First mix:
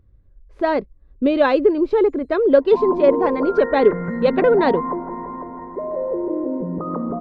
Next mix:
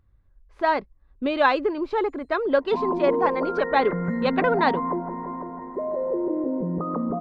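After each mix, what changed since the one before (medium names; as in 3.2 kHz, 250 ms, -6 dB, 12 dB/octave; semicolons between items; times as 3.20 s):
speech: add resonant low shelf 660 Hz -7.5 dB, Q 1.5; second sound: send -11.5 dB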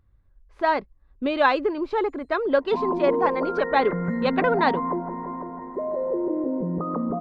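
no change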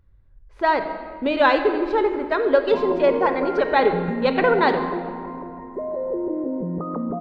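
speech: send on; master: add peaking EQ 1.1 kHz -3.5 dB 0.32 oct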